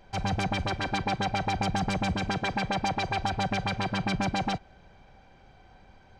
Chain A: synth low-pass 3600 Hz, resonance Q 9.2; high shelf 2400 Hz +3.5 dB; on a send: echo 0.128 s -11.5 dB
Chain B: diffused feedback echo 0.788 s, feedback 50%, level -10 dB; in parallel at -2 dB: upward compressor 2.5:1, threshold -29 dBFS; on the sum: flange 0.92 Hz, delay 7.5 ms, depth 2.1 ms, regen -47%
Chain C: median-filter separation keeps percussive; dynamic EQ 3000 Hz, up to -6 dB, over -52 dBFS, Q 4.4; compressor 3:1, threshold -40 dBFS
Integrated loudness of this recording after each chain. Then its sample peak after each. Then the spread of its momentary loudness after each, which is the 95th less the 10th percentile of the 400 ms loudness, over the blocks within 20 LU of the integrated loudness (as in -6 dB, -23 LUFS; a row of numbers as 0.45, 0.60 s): -23.0, -28.0, -41.5 LUFS; -8.5, -14.5, -27.5 dBFS; 2, 10, 1 LU